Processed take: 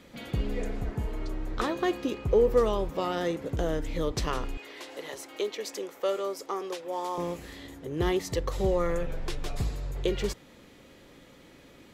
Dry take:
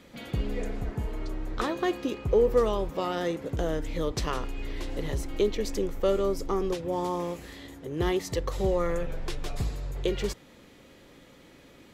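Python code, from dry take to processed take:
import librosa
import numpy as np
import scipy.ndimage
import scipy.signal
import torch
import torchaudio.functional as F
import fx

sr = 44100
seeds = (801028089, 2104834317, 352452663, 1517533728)

y = fx.highpass(x, sr, hz=530.0, slope=12, at=(4.57, 7.18))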